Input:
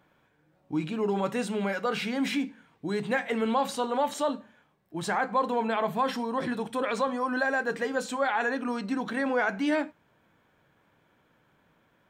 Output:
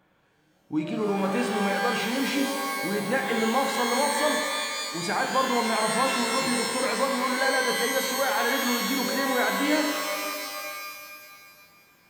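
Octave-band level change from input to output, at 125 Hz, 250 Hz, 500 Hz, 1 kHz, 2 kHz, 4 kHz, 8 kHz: +2.5 dB, +2.0 dB, +2.5 dB, +3.5 dB, +5.0 dB, +11.5 dB, +14.5 dB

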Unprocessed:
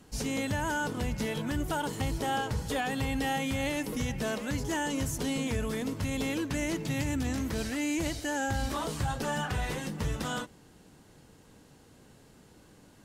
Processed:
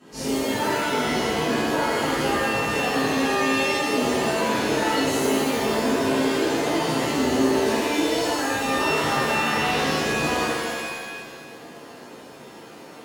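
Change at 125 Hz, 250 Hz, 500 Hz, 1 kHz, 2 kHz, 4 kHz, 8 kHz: 0.0 dB, +8.0 dB, +13.0 dB, +11.0 dB, +11.0 dB, +11.5 dB, +7.5 dB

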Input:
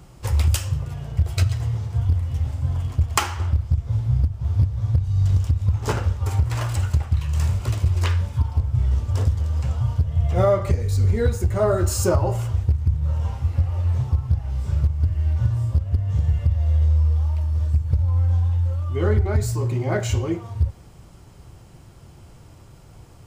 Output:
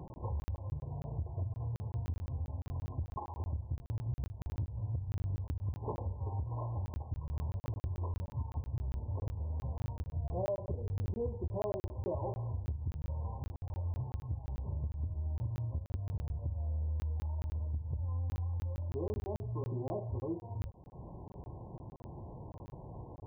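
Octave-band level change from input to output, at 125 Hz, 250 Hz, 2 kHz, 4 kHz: -17.0 dB, -13.5 dB, under -25 dB, under -25 dB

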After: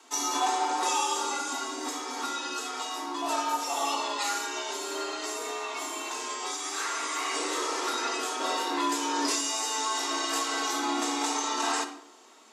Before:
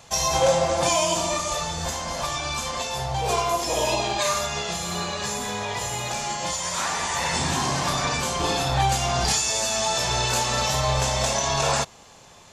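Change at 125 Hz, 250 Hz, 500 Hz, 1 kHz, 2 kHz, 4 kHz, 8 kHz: under -40 dB, -2.0 dB, -10.0 dB, -4.0 dB, -5.0 dB, -6.0 dB, -6.0 dB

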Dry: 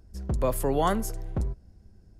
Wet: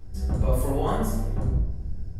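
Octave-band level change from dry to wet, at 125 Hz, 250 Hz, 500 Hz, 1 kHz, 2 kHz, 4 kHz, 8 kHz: +6.5 dB, +2.0 dB, -1.0 dB, -2.0 dB, -3.0 dB, -3.5 dB, -2.5 dB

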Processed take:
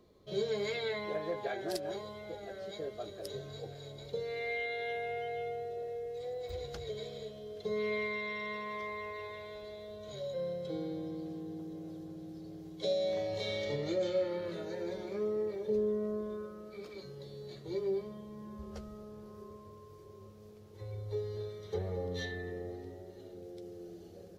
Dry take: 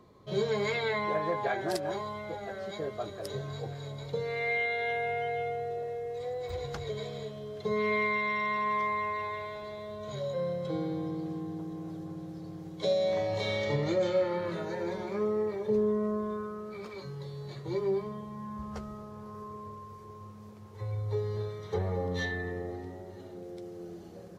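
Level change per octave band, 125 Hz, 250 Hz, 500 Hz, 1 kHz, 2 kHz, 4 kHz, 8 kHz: -8.0 dB, -5.5 dB, -4.0 dB, -10.5 dB, -7.5 dB, -2.5 dB, no reading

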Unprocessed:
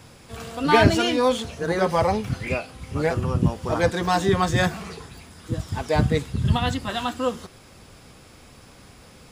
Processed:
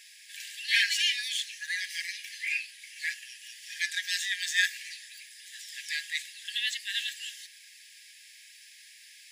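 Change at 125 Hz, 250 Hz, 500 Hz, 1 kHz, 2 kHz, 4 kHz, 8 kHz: under -40 dB, under -40 dB, under -40 dB, under -40 dB, -1.0 dB, +1.5 dB, +1.5 dB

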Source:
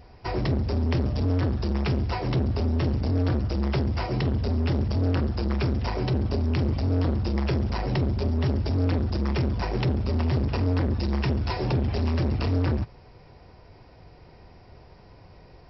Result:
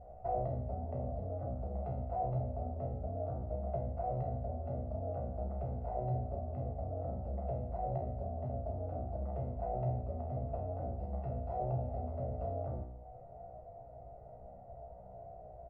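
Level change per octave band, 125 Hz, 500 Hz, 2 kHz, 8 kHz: -14.0 dB, -7.5 dB, under -30 dB, no reading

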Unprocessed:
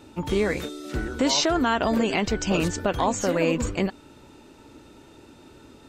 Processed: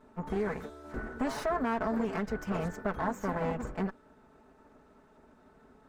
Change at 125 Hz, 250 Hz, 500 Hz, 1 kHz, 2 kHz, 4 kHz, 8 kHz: -8.0 dB, -9.0 dB, -9.0 dB, -7.0 dB, -10.0 dB, -22.5 dB, -21.5 dB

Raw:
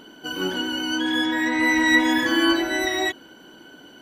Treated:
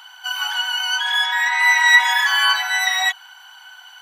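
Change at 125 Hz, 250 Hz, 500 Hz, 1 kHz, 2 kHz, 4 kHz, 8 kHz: under -40 dB, under -40 dB, under -15 dB, +6.5 dB, +7.0 dB, +7.0 dB, +7.0 dB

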